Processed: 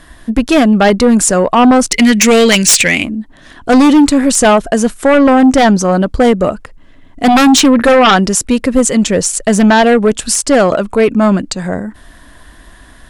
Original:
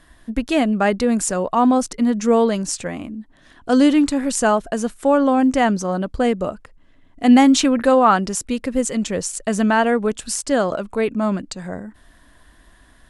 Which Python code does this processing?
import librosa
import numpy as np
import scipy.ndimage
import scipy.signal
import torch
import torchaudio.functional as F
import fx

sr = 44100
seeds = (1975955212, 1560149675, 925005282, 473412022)

y = fx.high_shelf_res(x, sr, hz=1600.0, db=11.5, q=3.0, at=(1.91, 3.03), fade=0.02)
y = fx.fold_sine(y, sr, drive_db=16, ceiling_db=5.0)
y = F.gain(torch.from_numpy(y), -8.0).numpy()